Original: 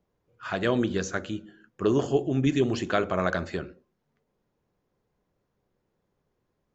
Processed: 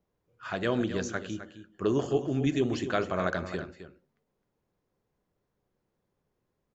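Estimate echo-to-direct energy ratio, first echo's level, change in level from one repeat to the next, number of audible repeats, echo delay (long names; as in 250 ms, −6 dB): −11.5 dB, −11.5 dB, repeats not evenly spaced, 1, 261 ms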